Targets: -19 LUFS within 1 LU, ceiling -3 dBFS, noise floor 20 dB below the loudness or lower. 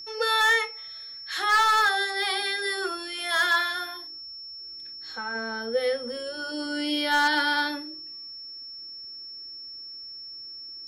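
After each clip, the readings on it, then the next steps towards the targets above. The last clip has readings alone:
clipped samples 0.5%; clipping level -16.0 dBFS; steady tone 5.4 kHz; tone level -38 dBFS; loudness -25.0 LUFS; peak level -16.0 dBFS; loudness target -19.0 LUFS
-> clip repair -16 dBFS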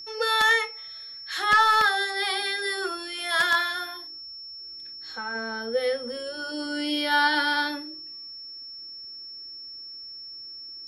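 clipped samples 0.0%; steady tone 5.4 kHz; tone level -38 dBFS
-> band-stop 5.4 kHz, Q 30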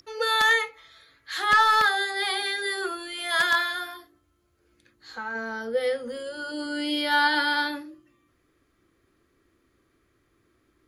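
steady tone not found; loudness -24.0 LUFS; peak level -6.5 dBFS; loudness target -19.0 LUFS
-> trim +5 dB; peak limiter -3 dBFS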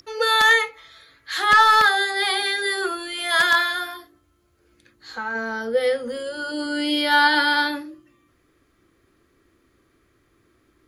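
loudness -19.5 LUFS; peak level -3.0 dBFS; noise floor -64 dBFS

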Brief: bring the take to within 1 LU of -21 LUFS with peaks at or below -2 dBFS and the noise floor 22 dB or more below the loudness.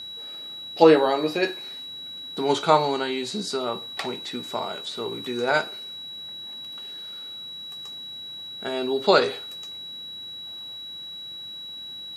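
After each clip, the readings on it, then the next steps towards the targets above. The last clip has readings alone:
steady tone 3.9 kHz; tone level -35 dBFS; loudness -26.5 LUFS; peak level -3.0 dBFS; loudness target -21.0 LUFS
-> band-stop 3.9 kHz, Q 30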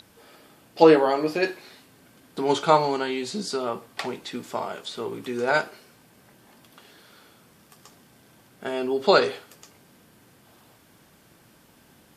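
steady tone not found; loudness -23.5 LUFS; peak level -3.5 dBFS; loudness target -21.0 LUFS
-> trim +2.5 dB; peak limiter -2 dBFS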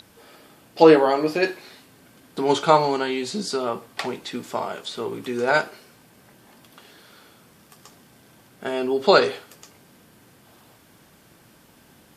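loudness -21.5 LUFS; peak level -2.0 dBFS; noise floor -54 dBFS

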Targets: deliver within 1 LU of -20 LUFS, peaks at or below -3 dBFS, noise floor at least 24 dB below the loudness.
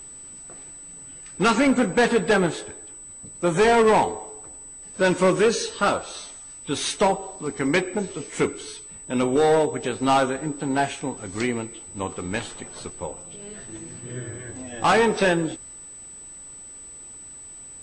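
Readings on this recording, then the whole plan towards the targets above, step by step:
steady tone 8 kHz; tone level -39 dBFS; loudness -22.5 LUFS; peak level -11.5 dBFS; loudness target -20.0 LUFS
-> band-stop 8 kHz, Q 30; trim +2.5 dB

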